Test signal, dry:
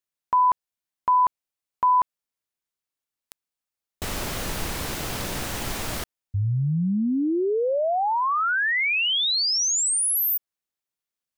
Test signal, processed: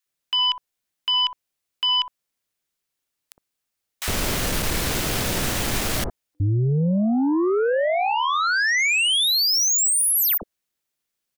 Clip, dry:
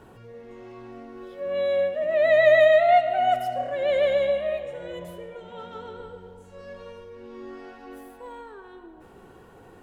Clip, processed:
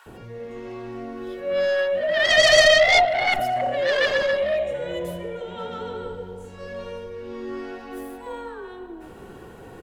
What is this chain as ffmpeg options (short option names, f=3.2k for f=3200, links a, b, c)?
-filter_complex "[0:a]aeval=exprs='0.422*(cos(1*acos(clip(val(0)/0.422,-1,1)))-cos(1*PI/2))+0.0075*(cos(6*acos(clip(val(0)/0.422,-1,1)))-cos(6*PI/2))+0.211*(cos(7*acos(clip(val(0)/0.422,-1,1)))-cos(7*PI/2))+0.00473*(cos(8*acos(clip(val(0)/0.422,-1,1)))-cos(8*PI/2))':c=same,acrossover=split=960[a][b];[a]adelay=60[c];[c][b]amix=inputs=2:normalize=0"